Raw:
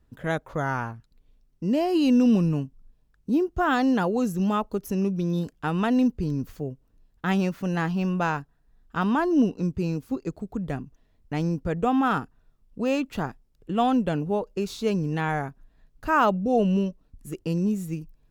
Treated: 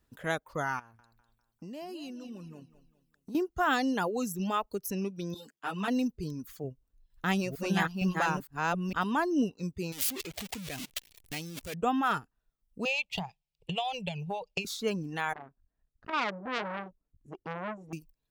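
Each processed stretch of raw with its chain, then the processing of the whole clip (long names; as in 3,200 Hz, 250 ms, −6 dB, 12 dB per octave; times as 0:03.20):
0:00.79–0:03.35: downward compressor 5 to 1, threshold −34 dBFS + repeating echo 200 ms, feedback 41%, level −9 dB
0:05.34–0:05.88: high-pass filter 150 Hz + string-ensemble chorus
0:06.64–0:09.04: delay that plays each chunk backwards 458 ms, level −0.5 dB + low-shelf EQ 100 Hz +11 dB
0:09.92–0:11.74: converter with a step at zero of −29 dBFS + high shelf with overshoot 1,900 Hz +8 dB, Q 1.5 + output level in coarse steps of 16 dB
0:12.85–0:14.65: transient designer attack +11 dB, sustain −2 dB + drawn EQ curve 100 Hz 0 dB, 180 Hz +8 dB, 260 Hz −27 dB, 390 Hz −6 dB, 840 Hz +5 dB, 1,500 Hz −19 dB, 2,400 Hz +12 dB, 4,800 Hz +5 dB, 12,000 Hz −9 dB + downward compressor 8 to 1, threshold −24 dBFS
0:15.33–0:17.93: head-to-tape spacing loss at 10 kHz 38 dB + saturating transformer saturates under 1,700 Hz
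whole clip: reverb reduction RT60 1.1 s; spectral tilt +2 dB per octave; level −3 dB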